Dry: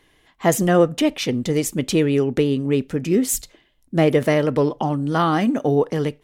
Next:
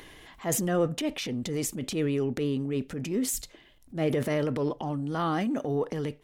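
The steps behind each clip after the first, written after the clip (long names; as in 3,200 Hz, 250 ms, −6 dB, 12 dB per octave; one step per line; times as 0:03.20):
upward compression, threshold −26 dBFS
transient designer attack −7 dB, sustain +6 dB
level −9 dB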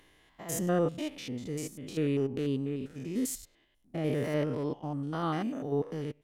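spectrum averaged block by block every 100 ms
expander for the loud parts 1.5 to 1, over −48 dBFS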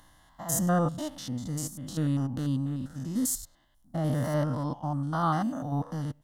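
phaser with its sweep stopped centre 1,000 Hz, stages 4
level +8 dB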